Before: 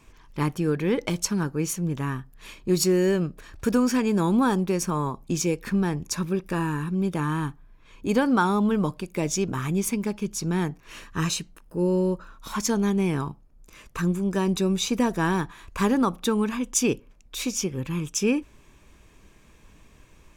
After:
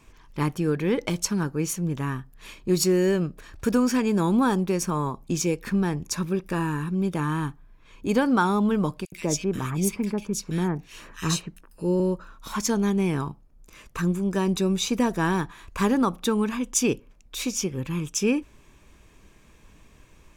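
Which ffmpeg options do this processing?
-filter_complex "[0:a]asettb=1/sr,asplit=3[a][b][c];[a]atrim=end=9.054[d];[b]atrim=start=9.05:end=12,asetpts=PTS-STARTPTS,afade=t=in:d=0.004:c=qsin,afade=t=out:st=2.946:d=0.004:c=qsin,acrossover=split=1900[e][f];[e]adelay=70[g];[g][f]amix=inputs=2:normalize=0,atrim=end_sample=130095[h];[c]atrim=start=11.996[i];[d][h]acrossfade=d=0.004:c1=hsin:c2=qsin[j];[j][i]acrossfade=d=0.004:c1=qsin:c2=hsin"

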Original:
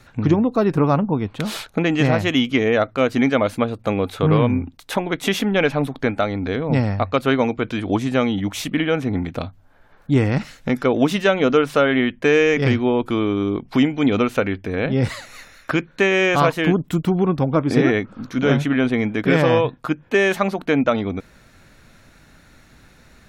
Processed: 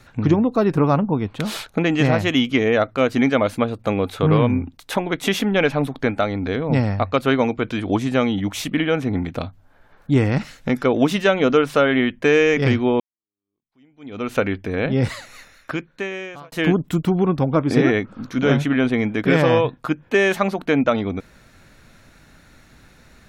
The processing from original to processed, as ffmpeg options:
-filter_complex "[0:a]asplit=3[a][b][c];[a]atrim=end=13,asetpts=PTS-STARTPTS,afade=t=out:st=12.996:d=0.004:c=hsin[d];[b]atrim=start=13:end=16.52,asetpts=PTS-STARTPTS,afade=t=in:d=1.33:c=exp,afade=t=out:st=2:d=1.52[e];[c]atrim=start=16.52,asetpts=PTS-STARTPTS,afade=t=in:d=0.004:c=hsin[f];[d][e][f]concat=n=3:v=0:a=1"

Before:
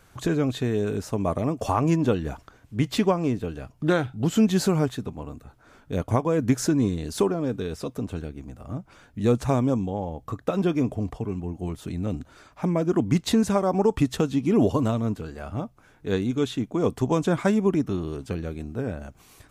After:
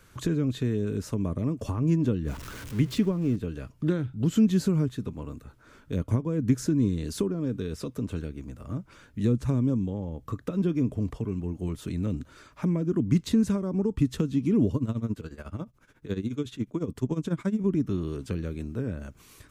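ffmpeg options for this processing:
-filter_complex "[0:a]asettb=1/sr,asplit=3[a][b][c];[a]atrim=end=2.274[d];[b]atrim=start=2.27:end=3.36,asetpts=PTS-STARTPTS,afade=t=in:d=0.004:c=qsin,afade=t=out:st=1.086:d=0.004:c=qsin,aeval=exprs='val(0)+0.5*0.0178*sgn(val(0))':c=same[e];[c]atrim=start=3.356[f];[d][e]acrossfade=d=0.004:c1=hsin:c2=qsin[g];[g][f]acrossfade=d=0.004:c1=qsin:c2=hsin,asettb=1/sr,asplit=3[h][i][j];[h]atrim=end=14.764[k];[i]atrim=start=14.76:end=17.64,asetpts=PTS-STARTPTS,afade=t=in:d=0.004:c=qsin,afade=t=out:st=2.876:d=0.004:c=qsin,tremolo=f=14:d=0.84[l];[j]atrim=start=17.636[m];[k][l]acrossfade=d=0.004:c1=hsin:c2=qsin[n];[n][m]acrossfade=d=0.004:c1=qsin:c2=hsin,acrossover=split=330[o][p];[p]acompressor=threshold=-36dB:ratio=5[q];[o][q]amix=inputs=2:normalize=0,equalizer=f=750:t=o:w=0.39:g=-11.5"

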